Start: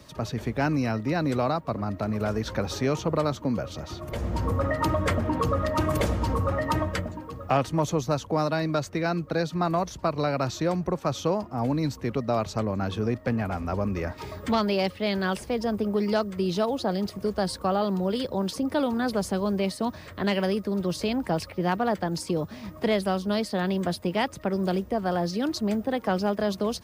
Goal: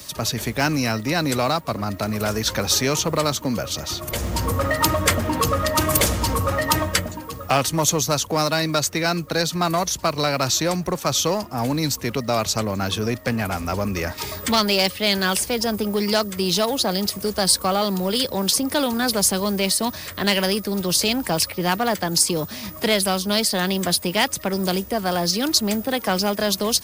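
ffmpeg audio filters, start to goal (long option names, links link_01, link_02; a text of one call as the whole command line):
ffmpeg -i in.wav -filter_complex "[0:a]asplit=2[link_01][link_02];[link_02]asoftclip=type=hard:threshold=-24dB,volume=-7.5dB[link_03];[link_01][link_03]amix=inputs=2:normalize=0,crystalizer=i=6.5:c=0" out.wav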